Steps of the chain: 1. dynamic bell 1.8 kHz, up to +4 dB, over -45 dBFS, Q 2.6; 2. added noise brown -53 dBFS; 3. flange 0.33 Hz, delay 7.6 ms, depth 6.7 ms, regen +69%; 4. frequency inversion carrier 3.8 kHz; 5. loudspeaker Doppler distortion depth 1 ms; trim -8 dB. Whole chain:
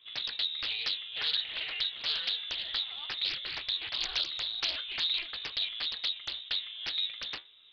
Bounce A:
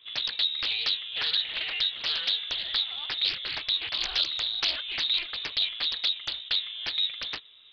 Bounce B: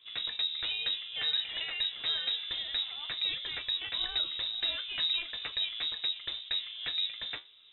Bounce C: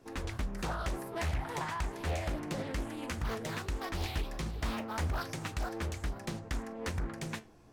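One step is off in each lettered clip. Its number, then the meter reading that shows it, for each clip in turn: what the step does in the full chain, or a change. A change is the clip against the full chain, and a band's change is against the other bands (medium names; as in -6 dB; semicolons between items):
3, crest factor change -2.0 dB; 5, 1 kHz band -2.0 dB; 4, 4 kHz band -30.0 dB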